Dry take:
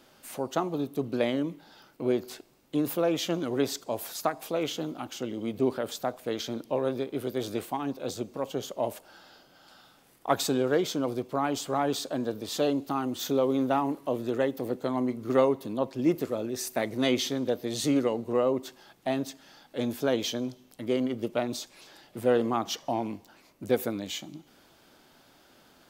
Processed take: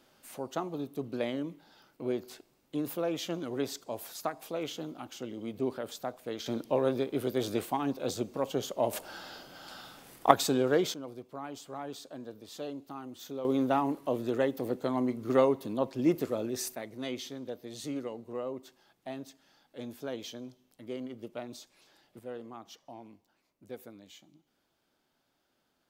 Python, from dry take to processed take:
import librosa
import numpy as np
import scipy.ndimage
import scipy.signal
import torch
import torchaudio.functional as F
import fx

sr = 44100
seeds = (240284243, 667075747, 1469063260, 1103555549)

y = fx.gain(x, sr, db=fx.steps((0.0, -6.0), (6.46, 0.5), (8.93, 8.0), (10.31, -1.0), (10.94, -13.0), (13.45, -1.5), (16.75, -11.5), (22.19, -18.0)))